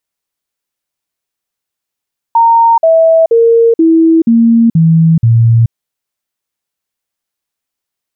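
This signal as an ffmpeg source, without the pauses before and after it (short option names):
-f lavfi -i "aevalsrc='0.668*clip(min(mod(t,0.48),0.43-mod(t,0.48))/0.005,0,1)*sin(2*PI*922*pow(2,-floor(t/0.48)/2)*mod(t,0.48))':d=3.36:s=44100"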